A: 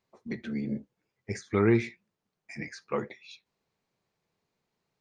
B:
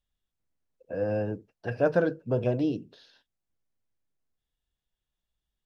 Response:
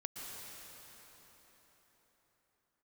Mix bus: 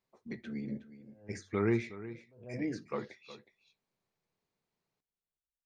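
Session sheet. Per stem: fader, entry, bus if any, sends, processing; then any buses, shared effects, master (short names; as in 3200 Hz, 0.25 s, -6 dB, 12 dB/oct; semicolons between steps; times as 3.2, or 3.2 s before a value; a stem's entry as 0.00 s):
-6.5 dB, 0.00 s, no send, echo send -15 dB, de-hum 47.11 Hz, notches 2
+1.0 dB, 0.00 s, no send, no echo send, gate -59 dBFS, range -20 dB; treble ducked by the level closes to 1500 Hz, closed at -25 dBFS; attack slew limiter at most 110 dB/s; auto duck -9 dB, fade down 1.45 s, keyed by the first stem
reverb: off
echo: echo 0.366 s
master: dry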